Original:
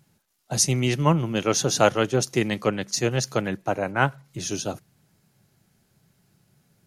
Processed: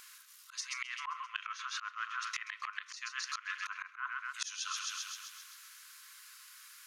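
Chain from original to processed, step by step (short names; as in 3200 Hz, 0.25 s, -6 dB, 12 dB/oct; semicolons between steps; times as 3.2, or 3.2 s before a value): on a send at -18.5 dB: reverb RT60 0.45 s, pre-delay 3 ms; on the sum: treble ducked by the level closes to 1400 Hz, closed at -18 dBFS; brick-wall FIR high-pass 1000 Hz; thin delay 0.132 s, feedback 58%, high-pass 1400 Hz, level -12 dB; auto swell 0.419 s; reverse; compressor 10:1, threshold -52 dBFS, peak gain reduction 18.5 dB; reverse; gain +16 dB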